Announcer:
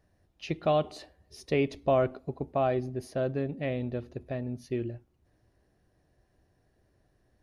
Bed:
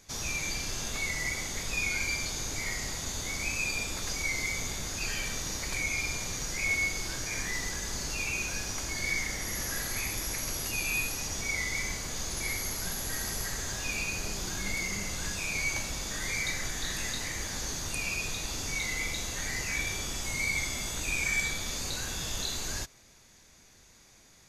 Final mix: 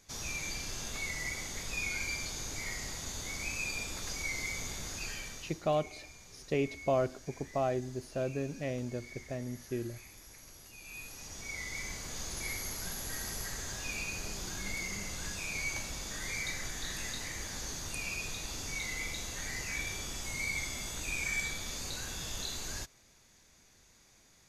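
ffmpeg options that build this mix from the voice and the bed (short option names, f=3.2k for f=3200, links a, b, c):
-filter_complex "[0:a]adelay=5000,volume=-4.5dB[a];[1:a]volume=9.5dB,afade=t=out:st=4.92:d=0.71:silence=0.188365,afade=t=in:st=10.79:d=1.39:silence=0.188365[b];[a][b]amix=inputs=2:normalize=0"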